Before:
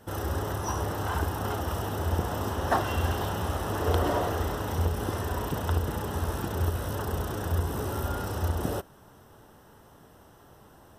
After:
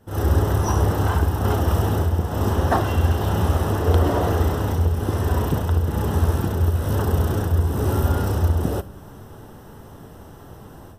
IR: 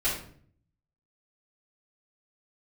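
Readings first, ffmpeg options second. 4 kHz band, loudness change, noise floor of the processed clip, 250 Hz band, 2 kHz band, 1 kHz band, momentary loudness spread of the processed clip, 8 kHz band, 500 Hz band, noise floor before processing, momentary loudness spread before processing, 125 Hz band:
+3.5 dB, +9.0 dB, -42 dBFS, +9.0 dB, +3.5 dB, +4.5 dB, 3 LU, +4.0 dB, +6.5 dB, -55 dBFS, 5 LU, +11.0 dB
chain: -filter_complex "[0:a]lowshelf=f=400:g=8.5,dynaudnorm=f=100:g=3:m=14dB,asplit=2[a][b];[1:a]atrim=start_sample=2205,highshelf=f=8.5k:g=11.5[c];[b][c]afir=irnorm=-1:irlink=0,volume=-24dB[d];[a][d]amix=inputs=2:normalize=0,volume=-7dB"

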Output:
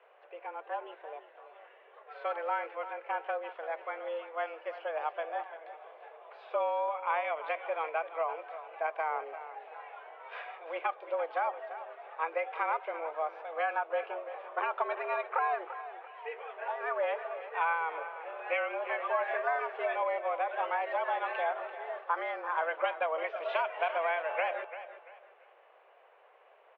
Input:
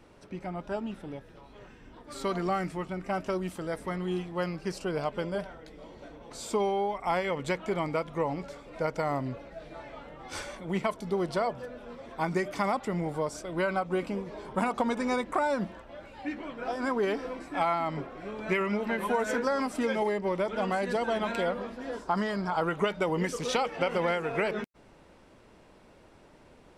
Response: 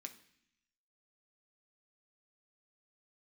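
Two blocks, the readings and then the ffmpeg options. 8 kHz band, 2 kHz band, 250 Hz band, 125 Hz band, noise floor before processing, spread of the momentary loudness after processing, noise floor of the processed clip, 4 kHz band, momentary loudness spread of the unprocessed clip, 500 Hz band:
under -35 dB, -0.5 dB, -24.5 dB, under -40 dB, -56 dBFS, 14 LU, -60 dBFS, -9.0 dB, 14 LU, -4.0 dB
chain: -af "highpass=f=320:t=q:w=0.5412,highpass=f=320:t=q:w=1.307,lowpass=f=2.8k:t=q:w=0.5176,lowpass=f=2.8k:t=q:w=0.7071,lowpass=f=2.8k:t=q:w=1.932,afreqshift=160,aecho=1:1:341|682|1023:0.237|0.0735|0.0228,volume=-2.5dB"

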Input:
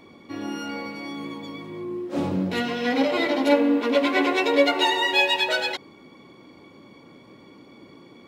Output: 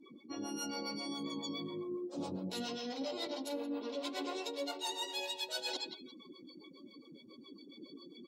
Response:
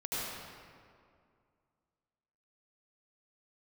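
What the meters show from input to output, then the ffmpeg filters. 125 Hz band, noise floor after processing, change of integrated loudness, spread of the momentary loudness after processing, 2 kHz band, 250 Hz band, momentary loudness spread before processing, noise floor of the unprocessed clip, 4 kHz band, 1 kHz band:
-15.0 dB, -58 dBFS, -17.0 dB, 17 LU, -22.5 dB, -16.0 dB, 16 LU, -50 dBFS, -13.0 dB, -18.0 dB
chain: -filter_complex "[0:a]highpass=f=210:p=1,highshelf=f=3.1k:g=8.5,aecho=1:1:177|354|531:0.133|0.0373|0.0105,acrossover=split=460[a][b];[a]aeval=exprs='val(0)*(1-0.7/2+0.7/2*cos(2*PI*7.3*n/s))':c=same[c];[b]aeval=exprs='val(0)*(1-0.7/2-0.7/2*cos(2*PI*7.3*n/s))':c=same[d];[c][d]amix=inputs=2:normalize=0,acrossover=split=4000[e][f];[f]dynaudnorm=f=190:g=5:m=6.5dB[g];[e][g]amix=inputs=2:normalize=0,afftdn=nr=26:nf=-44,equalizer=f=2k:w=1.3:g=-13.5,areverse,acompressor=threshold=-40dB:ratio=10,areverse,volume=3dB"

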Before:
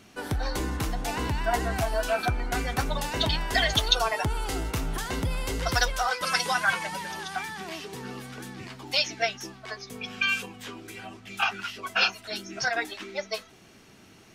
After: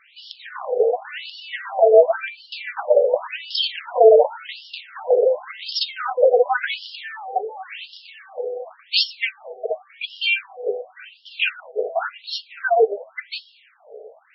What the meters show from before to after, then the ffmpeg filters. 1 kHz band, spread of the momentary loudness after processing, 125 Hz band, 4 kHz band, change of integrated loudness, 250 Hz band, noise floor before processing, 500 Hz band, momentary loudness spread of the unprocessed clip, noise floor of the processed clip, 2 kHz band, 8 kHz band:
+4.5 dB, 19 LU, under -40 dB, +3.0 dB, +7.5 dB, under -10 dB, -53 dBFS, +16.0 dB, 15 LU, -54 dBFS, +0.5 dB, under -25 dB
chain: -af "lowshelf=f=690:t=q:w=3:g=13,acontrast=30,afftfilt=real='re*between(b*sr/1024,550*pow(4000/550,0.5+0.5*sin(2*PI*0.91*pts/sr))/1.41,550*pow(4000/550,0.5+0.5*sin(2*PI*0.91*pts/sr))*1.41)':imag='im*between(b*sr/1024,550*pow(4000/550,0.5+0.5*sin(2*PI*0.91*pts/sr))/1.41,550*pow(4000/550,0.5+0.5*sin(2*PI*0.91*pts/sr))*1.41)':win_size=1024:overlap=0.75,volume=4dB"

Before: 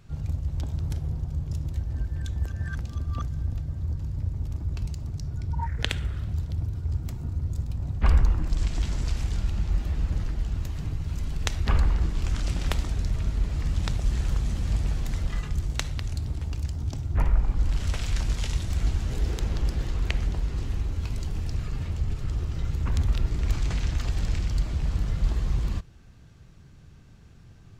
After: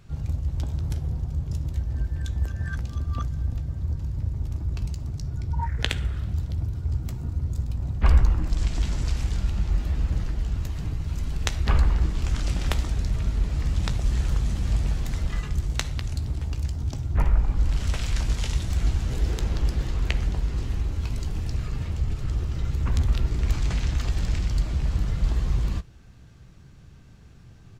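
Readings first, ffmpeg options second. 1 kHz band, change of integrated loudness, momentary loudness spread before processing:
+2.0 dB, +2.0 dB, 6 LU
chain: -filter_complex "[0:a]asplit=2[a][b];[b]adelay=16,volume=-13dB[c];[a][c]amix=inputs=2:normalize=0,volume=1.5dB"

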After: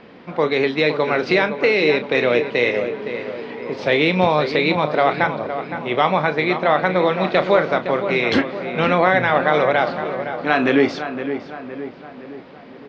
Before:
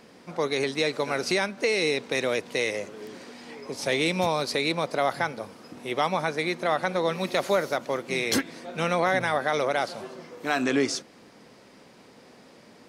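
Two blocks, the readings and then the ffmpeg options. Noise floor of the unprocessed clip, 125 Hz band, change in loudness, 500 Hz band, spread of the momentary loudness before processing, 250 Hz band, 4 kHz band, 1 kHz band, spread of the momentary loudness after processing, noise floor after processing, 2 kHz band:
-53 dBFS, +9.0 dB, +8.0 dB, +9.0 dB, 14 LU, +9.0 dB, +4.0 dB, +9.0 dB, 13 LU, -40 dBFS, +8.5 dB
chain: -filter_complex "[0:a]lowpass=f=3.5k:w=0.5412,lowpass=f=3.5k:w=1.3066,asplit=2[a][b];[b]adelay=33,volume=-11dB[c];[a][c]amix=inputs=2:normalize=0,asplit=2[d][e];[e]adelay=514,lowpass=f=2.1k:p=1,volume=-9dB,asplit=2[f][g];[g]adelay=514,lowpass=f=2.1k:p=1,volume=0.54,asplit=2[h][i];[i]adelay=514,lowpass=f=2.1k:p=1,volume=0.54,asplit=2[j][k];[k]adelay=514,lowpass=f=2.1k:p=1,volume=0.54,asplit=2[l][m];[m]adelay=514,lowpass=f=2.1k:p=1,volume=0.54,asplit=2[n][o];[o]adelay=514,lowpass=f=2.1k:p=1,volume=0.54[p];[d][f][h][j][l][n][p]amix=inputs=7:normalize=0,volume=8dB"

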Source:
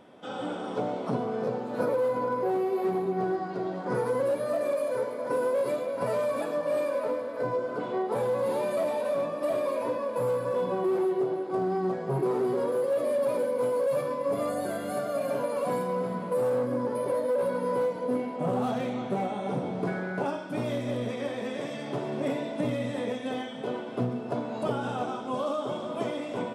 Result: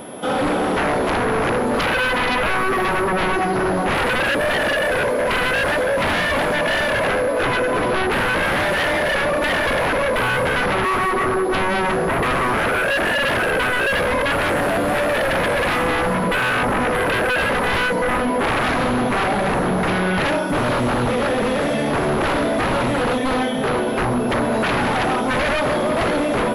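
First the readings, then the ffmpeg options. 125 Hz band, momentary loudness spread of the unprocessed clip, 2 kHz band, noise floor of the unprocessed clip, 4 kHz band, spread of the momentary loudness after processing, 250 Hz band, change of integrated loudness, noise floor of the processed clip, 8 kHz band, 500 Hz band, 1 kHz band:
+11.0 dB, 6 LU, +23.5 dB, -36 dBFS, +20.5 dB, 2 LU, +9.5 dB, +10.5 dB, -20 dBFS, +16.0 dB, +6.5 dB, +13.5 dB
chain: -filter_complex "[0:a]acrossover=split=2800[a][b];[b]acompressor=threshold=-55dB:ratio=4:attack=1:release=60[c];[a][c]amix=inputs=2:normalize=0,aeval=exprs='0.158*sin(PI/2*5.62*val(0)/0.158)':c=same,aeval=exprs='val(0)+0.00794*sin(2*PI*11000*n/s)':c=same"

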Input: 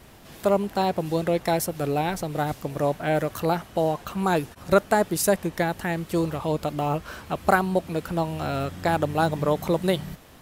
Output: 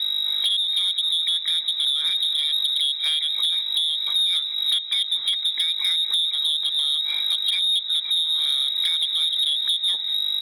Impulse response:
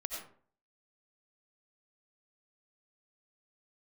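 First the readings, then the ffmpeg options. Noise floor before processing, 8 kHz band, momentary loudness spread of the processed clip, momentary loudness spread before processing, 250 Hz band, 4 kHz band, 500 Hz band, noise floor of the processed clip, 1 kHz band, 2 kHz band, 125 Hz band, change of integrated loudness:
-48 dBFS, -0.5 dB, 2 LU, 6 LU, under -35 dB, +24.0 dB, under -35 dB, -30 dBFS, under -20 dB, -6.5 dB, under -40 dB, +5.5 dB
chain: -filter_complex "[0:a]bandreject=f=50:t=h:w=6,bandreject=f=100:t=h:w=6,bandreject=f=150:t=h:w=6,bandreject=f=200:t=h:w=6,bandreject=f=250:t=h:w=6,bandreject=f=300:t=h:w=6,bandreject=f=350:t=h:w=6,acrossover=split=1700[a][b];[a]acontrast=64[c];[c][b]amix=inputs=2:normalize=0,aeval=exprs='val(0)+0.0316*(sin(2*PI*50*n/s)+sin(2*PI*2*50*n/s)/2+sin(2*PI*3*50*n/s)/3+sin(2*PI*4*50*n/s)/4+sin(2*PI*5*50*n/s)/5)':c=same,afftfilt=real='re*(1-between(b*sr/4096,630,1500))':imag='im*(1-between(b*sr/4096,630,1500))':win_size=4096:overlap=0.75,equalizer=f=200:t=o:w=2.9:g=7.5,lowpass=f=3.3k:t=q:w=0.5098,lowpass=f=3.3k:t=q:w=0.6013,lowpass=f=3.3k:t=q:w=0.9,lowpass=f=3.3k:t=q:w=2.563,afreqshift=-3900,acompressor=threshold=-21dB:ratio=16,highpass=110,asplit=2[d][e];[e]asplit=4[f][g][h][i];[f]adelay=199,afreqshift=51,volume=-21dB[j];[g]adelay=398,afreqshift=102,volume=-26.4dB[k];[h]adelay=597,afreqshift=153,volume=-31.7dB[l];[i]adelay=796,afreqshift=204,volume=-37.1dB[m];[j][k][l][m]amix=inputs=4:normalize=0[n];[d][n]amix=inputs=2:normalize=0,asoftclip=type=tanh:threshold=-20.5dB,volume=5dB"

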